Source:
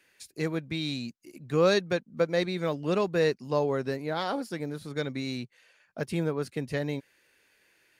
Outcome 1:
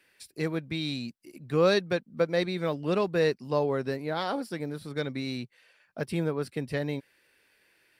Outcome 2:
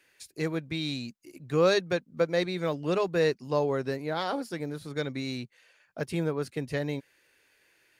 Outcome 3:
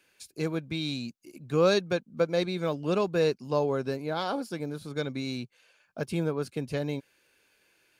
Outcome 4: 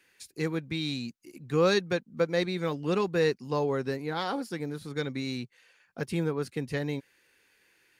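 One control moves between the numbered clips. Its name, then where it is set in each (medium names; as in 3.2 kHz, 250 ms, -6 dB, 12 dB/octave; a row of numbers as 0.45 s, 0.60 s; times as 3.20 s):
band-stop, frequency: 6.6 kHz, 210 Hz, 1.9 kHz, 620 Hz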